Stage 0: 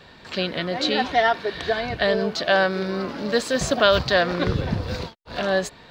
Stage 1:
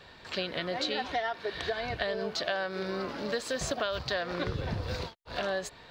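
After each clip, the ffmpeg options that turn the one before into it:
ffmpeg -i in.wav -af "equalizer=frequency=210:width=1.2:gain=-5.5,acompressor=threshold=-24dB:ratio=10,volume=-4dB" out.wav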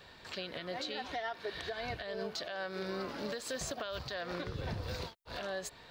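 ffmpeg -i in.wav -af "highshelf=frequency=8800:gain=9.5,alimiter=level_in=1dB:limit=-24dB:level=0:latency=1:release=204,volume=-1dB,volume=-3.5dB" out.wav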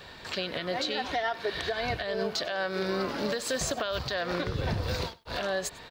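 ffmpeg -i in.wav -af "aecho=1:1:98:0.0841,volume=8.5dB" out.wav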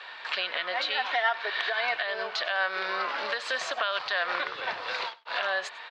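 ffmpeg -i in.wav -af "asuperpass=centerf=1700:order=4:qfactor=0.67,volume=7dB" out.wav

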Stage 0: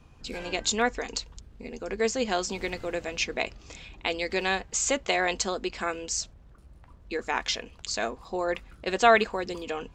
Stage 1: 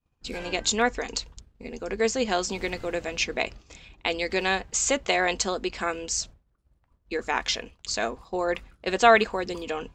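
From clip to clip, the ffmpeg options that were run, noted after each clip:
ffmpeg -i in.wav -af "agate=range=-33dB:threshold=-39dB:ratio=3:detection=peak,volume=2dB" out.wav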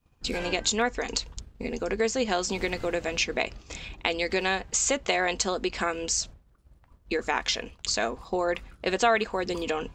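ffmpeg -i in.wav -af "acompressor=threshold=-40dB:ratio=2,volume=9dB" out.wav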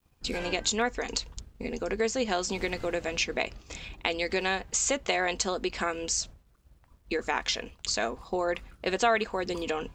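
ffmpeg -i in.wav -af "acrusher=bits=11:mix=0:aa=0.000001,volume=-2dB" out.wav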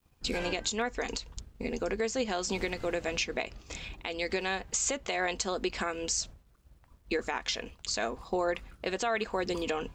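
ffmpeg -i in.wav -af "alimiter=limit=-19.5dB:level=0:latency=1:release=210" out.wav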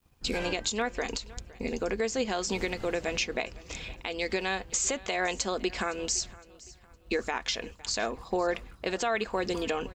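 ffmpeg -i in.wav -af "aecho=1:1:512|1024|1536:0.0891|0.0312|0.0109,volume=1.5dB" out.wav

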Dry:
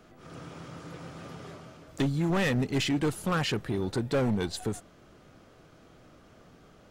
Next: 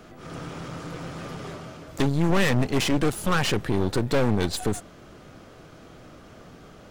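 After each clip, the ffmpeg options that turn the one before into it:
ffmpeg -i in.wav -af "aeval=exprs='clip(val(0),-1,0.00708)':channel_layout=same,volume=8.5dB" out.wav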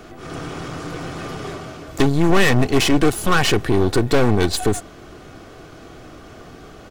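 ffmpeg -i in.wav -af "aecho=1:1:2.7:0.33,volume=6.5dB" out.wav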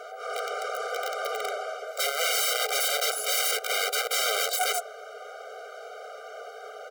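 ffmpeg -i in.wav -filter_complex "[0:a]acrossover=split=530|1400[link_01][link_02][link_03];[link_02]acontrast=74[link_04];[link_01][link_04][link_03]amix=inputs=3:normalize=0,aeval=exprs='(mod(7.5*val(0)+1,2)-1)/7.5':channel_layout=same,afftfilt=real='re*eq(mod(floor(b*sr/1024/400),2),1)':imag='im*eq(mod(floor(b*sr/1024/400),2),1)':win_size=1024:overlap=0.75" out.wav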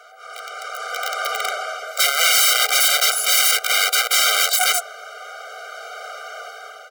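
ffmpeg -i in.wav -af "highpass=1000,dynaudnorm=framelen=380:gausssize=5:maxgain=14dB" out.wav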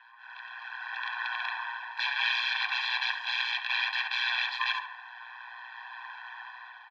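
ffmpeg -i in.wav -filter_complex "[0:a]tremolo=f=120:d=0.71,asplit=2[link_01][link_02];[link_02]adelay=70,lowpass=frequency=2400:poles=1,volume=-8dB,asplit=2[link_03][link_04];[link_04]adelay=70,lowpass=frequency=2400:poles=1,volume=0.54,asplit=2[link_05][link_06];[link_06]adelay=70,lowpass=frequency=2400:poles=1,volume=0.54,asplit=2[link_07][link_08];[link_08]adelay=70,lowpass=frequency=2400:poles=1,volume=0.54,asplit=2[link_09][link_10];[link_10]adelay=70,lowpass=frequency=2400:poles=1,volume=0.54,asplit=2[link_11][link_12];[link_12]adelay=70,lowpass=frequency=2400:poles=1,volume=0.54[link_13];[link_01][link_03][link_05][link_07][link_09][link_11][link_13]amix=inputs=7:normalize=0,highpass=frequency=430:width_type=q:width=0.5412,highpass=frequency=430:width_type=q:width=1.307,lowpass=frequency=3600:width_type=q:width=0.5176,lowpass=frequency=3600:width_type=q:width=0.7071,lowpass=frequency=3600:width_type=q:width=1.932,afreqshift=300,volume=-6.5dB" out.wav

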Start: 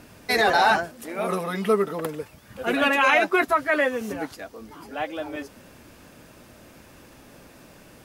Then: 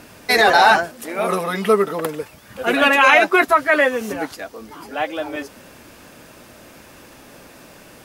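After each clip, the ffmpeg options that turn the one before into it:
ffmpeg -i in.wav -af "lowshelf=frequency=250:gain=-6.5,volume=7dB" out.wav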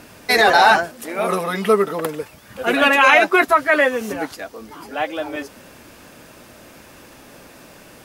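ffmpeg -i in.wav -af anull out.wav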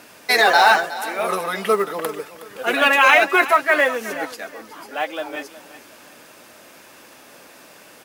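ffmpeg -i in.wav -af "highpass=frequency=490:poles=1,acrusher=bits=7:mode=log:mix=0:aa=0.000001,aecho=1:1:367|734|1101:0.168|0.0504|0.0151" out.wav

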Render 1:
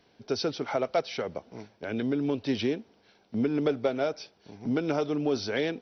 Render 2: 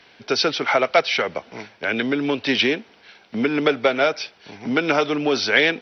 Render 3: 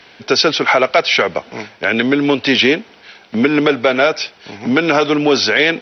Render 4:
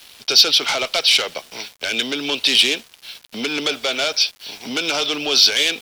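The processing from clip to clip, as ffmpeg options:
ffmpeg -i in.wav -filter_complex "[0:a]equalizer=frequency=2200:width_type=o:width=2.6:gain=15,acrossover=split=130|670[link_01][link_02][link_03];[link_01]acompressor=threshold=-56dB:ratio=6[link_04];[link_04][link_02][link_03]amix=inputs=3:normalize=0,volume=4dB" out.wav
ffmpeg -i in.wav -af "alimiter=level_in=9dB:limit=-1dB:release=50:level=0:latency=1,volume=-1dB" out.wav
ffmpeg -i in.wav -filter_complex "[0:a]asplit=2[link_01][link_02];[link_02]highpass=frequency=720:poles=1,volume=13dB,asoftclip=type=tanh:threshold=-1.5dB[link_03];[link_01][link_03]amix=inputs=2:normalize=0,lowpass=frequency=2400:poles=1,volume=-6dB,aexciter=amount=11.3:drive=2.2:freq=2800,aeval=exprs='val(0)*gte(abs(val(0)),0.0596)':channel_layout=same,volume=-13.5dB" out.wav

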